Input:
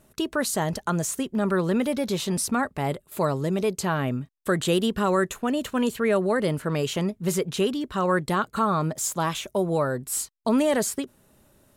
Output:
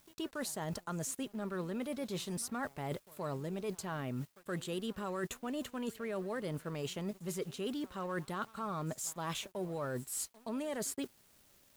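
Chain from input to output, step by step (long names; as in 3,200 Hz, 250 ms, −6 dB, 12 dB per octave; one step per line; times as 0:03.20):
background noise white −55 dBFS
backwards echo 122 ms −22.5 dB
reversed playback
downward compressor 8 to 1, threshold −31 dBFS, peak gain reduction 13 dB
reversed playback
dead-zone distortion −53.5 dBFS
level −4 dB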